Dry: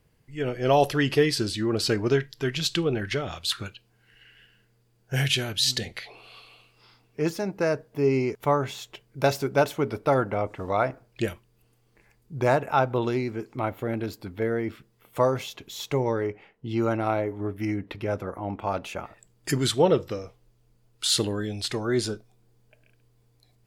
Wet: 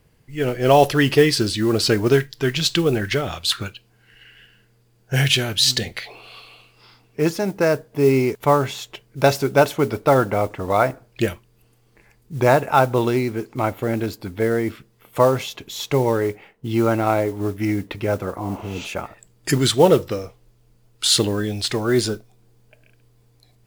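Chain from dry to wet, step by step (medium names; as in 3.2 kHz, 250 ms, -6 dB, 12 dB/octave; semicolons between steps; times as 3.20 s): spectral replace 18.44–18.83 s, 490–8200 Hz both; modulation noise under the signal 25 dB; trim +6.5 dB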